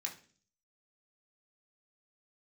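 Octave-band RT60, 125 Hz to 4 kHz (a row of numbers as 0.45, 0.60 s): 0.70, 0.65, 0.50, 0.35, 0.40, 0.50 s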